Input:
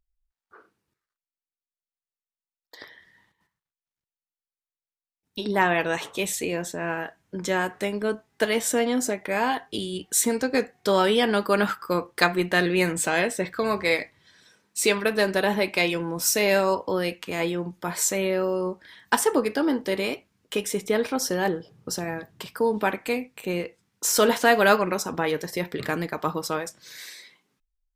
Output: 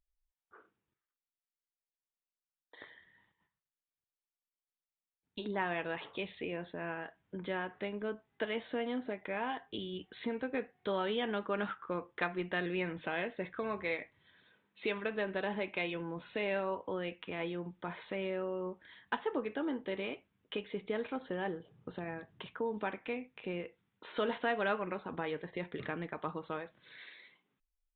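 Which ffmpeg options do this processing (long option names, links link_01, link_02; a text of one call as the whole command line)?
ffmpeg -i in.wav -af "aresample=8000,aresample=44100,aeval=exprs='0.708*(cos(1*acos(clip(val(0)/0.708,-1,1)))-cos(1*PI/2))+0.00501*(cos(5*acos(clip(val(0)/0.708,-1,1)))-cos(5*PI/2))+0.00398*(cos(7*acos(clip(val(0)/0.708,-1,1)))-cos(7*PI/2))':channel_layout=same,acompressor=threshold=-34dB:ratio=1.5,volume=-7.5dB" out.wav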